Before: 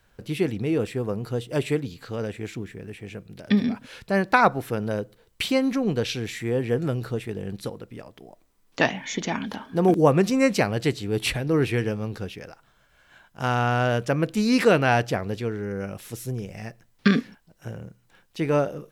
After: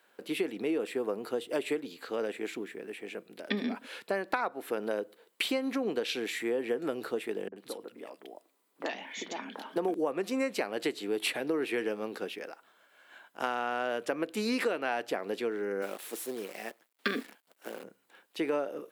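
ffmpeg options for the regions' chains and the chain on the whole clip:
-filter_complex "[0:a]asettb=1/sr,asplit=3[a][b][c];[a]atrim=end=7.484[d];[b]atrim=start=7.48:end=9.76,asetpts=PTS-STARTPTS,afade=t=in:d=0.004:c=qsin,afade=t=out:st=2.276:d=0.004:c=qsin,acompressor=threshold=-37dB:ratio=2:attack=3.2:release=140:knee=1:detection=peak,acrossover=split=180|1800[e][f][g];[f]adelay=40[h];[g]adelay=80[i];[e][h][i]amix=inputs=3:normalize=0,atrim=end_sample=100548[j];[c]atrim=start=9.756[k];[d][j]acrossfade=d=0.004:c1=hsin:c2=qsin[l];[l][k]acrossfade=d=0.004:c1=qsin:c2=hsin,asettb=1/sr,asplit=3[m][n][o];[m]atrim=end=15.824[p];[n]atrim=start=15.82:end=17.84,asetpts=PTS-STARTPTS,afade=t=in:d=0.004:c=qsin,afade=t=out:st=2.016:d=0.004:c=qsin,highpass=200,acrusher=bits=8:dc=4:mix=0:aa=0.000001[q];[o]atrim=start=17.836[r];[p][q]acrossfade=d=0.004:c1=hsin:c2=qsin[s];[s][r]acrossfade=d=0.004:c1=qsin:c2=hsin,highpass=f=280:w=0.5412,highpass=f=280:w=1.3066,equalizer=f=5.8k:w=2.2:g=-6.5,acompressor=threshold=-27dB:ratio=10"

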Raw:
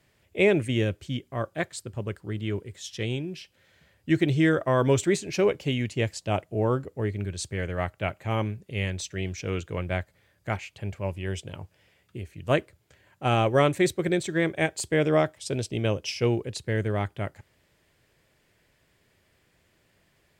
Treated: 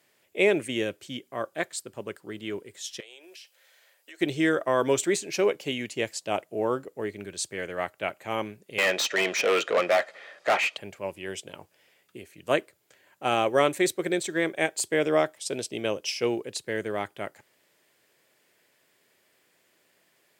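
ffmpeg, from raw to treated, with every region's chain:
-filter_complex "[0:a]asettb=1/sr,asplit=3[a][b][c];[a]atrim=end=3.004[d];[b]atrim=start=3:end=4.21,asetpts=PTS-STARTPTS,afade=t=in:d=0.004:c=qsin,afade=t=out:st=1.206:d=0.004:c=qsin,highpass=f=490:w=0.5412,highpass=f=490:w=1.3066,highshelf=f=4.8k:g=5,acompressor=threshold=-45dB:ratio=5:attack=3.2:release=140:knee=1:detection=peak[e];[c]atrim=start=4.206[f];[d][e]acrossfade=d=0.004:c1=hsin:c2=qsin[g];[g][f]acrossfade=d=0.004:c1=qsin:c2=hsin,asettb=1/sr,asplit=3[h][i][j];[h]atrim=end=8.784[k];[i]atrim=start=8.78:end=10.77,asetpts=PTS-STARTPTS,afade=t=in:d=0.004:c=qsin,afade=t=out:st=1.986:d=0.004:c=qsin,highpass=250,lowpass=6k,aecho=1:1:1.6:0.36,atrim=end_sample=87759,asplit=2[l][m];[m]highpass=f=720:p=1,volume=28dB,asoftclip=type=tanh:threshold=-12dB[n];[l][n]amix=inputs=2:normalize=0,lowpass=f=2.1k:p=1,volume=-6dB[o];[j]atrim=start=10.766[p];[k][o]acrossfade=d=0.004:c1=hsin:c2=qsin[q];[q][p]acrossfade=d=0.004:c1=qsin:c2=hsin,highpass=290,highshelf=f=8.1k:g=8"

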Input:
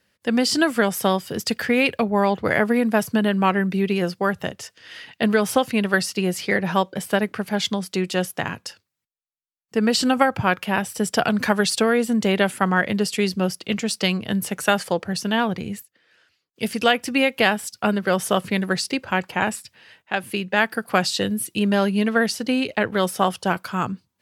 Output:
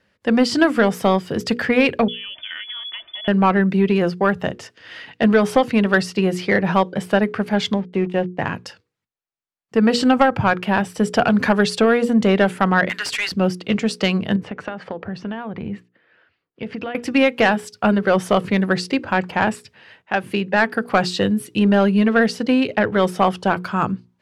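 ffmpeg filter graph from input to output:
-filter_complex "[0:a]asettb=1/sr,asplit=3[a][b][c];[a]atrim=end=2.084[d];[b]atrim=start=2.08:end=3.28,asetpts=PTS-STARTPTS,afade=t=in:d=0.004:c=qsin,afade=t=out:st=1.196:d=0.004:c=qsin,aecho=1:1:3.4:0.57,atrim=end_sample=52920,acompressor=threshold=-29dB:ratio=10:attack=3.2:release=140:knee=1:detection=peak,lowpass=f=3.1k:t=q:w=0.5098,lowpass=f=3.1k:t=q:w=0.6013,lowpass=f=3.1k:t=q:w=0.9,lowpass=f=3.1k:t=q:w=2.563,afreqshift=-3600[e];[c]atrim=start=3.276[f];[d][e]acrossfade=d=0.004:c1=hsin:c2=qsin[g];[g][f]acrossfade=d=0.004:c1=qsin:c2=hsin,asettb=1/sr,asplit=3[h][i][j];[h]atrim=end=7.744[k];[i]atrim=start=7.74:end=8.42,asetpts=PTS-STARTPTS,afade=t=in:d=0.004:c=qsin,afade=t=out:st=0.676:d=0.004:c=qsin,lowpass=f=2.5k:w=0.5412,lowpass=f=2.5k:w=1.3066,equalizer=f=1.3k:w=2.9:g=-14,aeval=exprs='sgn(val(0))*max(abs(val(0))-0.00708,0)':c=same[l];[j]atrim=start=8.416[m];[k][l]acrossfade=d=0.004:c1=hsin:c2=qsin[n];[n][m]acrossfade=d=0.004:c1=qsin:c2=hsin,asettb=1/sr,asplit=3[o][p][q];[o]atrim=end=12.894[r];[p]atrim=start=12.89:end=13.32,asetpts=PTS-STARTPTS,afade=t=in:d=0.004:c=qsin,afade=t=out:st=0.426:d=0.004:c=qsin,highpass=f=1.5k:t=q:w=3.5,highshelf=f=3.1k:g=8.5,volume=19.5dB,asoftclip=hard,volume=-19.5dB[s];[q]atrim=start=13.316[t];[r][s]acrossfade=d=0.004:c1=hsin:c2=qsin[u];[u][t]acrossfade=d=0.004:c1=qsin:c2=hsin,asettb=1/sr,asplit=3[v][w][x];[v]atrim=end=14.364[y];[w]atrim=start=14.36:end=16.95,asetpts=PTS-STARTPTS,afade=t=in:d=0.004:c=qsin,afade=t=out:st=2.586:d=0.004:c=qsin,lowpass=2.6k,acompressor=threshold=-28dB:ratio=12:attack=3.2:release=140:knee=1:detection=peak[z];[x]atrim=start=16.946[aa];[y][z]acrossfade=d=0.004:c1=hsin:c2=qsin[ab];[ab][aa]acrossfade=d=0.004:c1=qsin:c2=hsin,aemphasis=mode=reproduction:type=75fm,bandreject=f=60:t=h:w=6,bandreject=f=120:t=h:w=6,bandreject=f=180:t=h:w=6,bandreject=f=240:t=h:w=6,bandreject=f=300:t=h:w=6,bandreject=f=360:t=h:w=6,bandreject=f=420:t=h:w=6,bandreject=f=480:t=h:w=6,acontrast=81,volume=-2dB"

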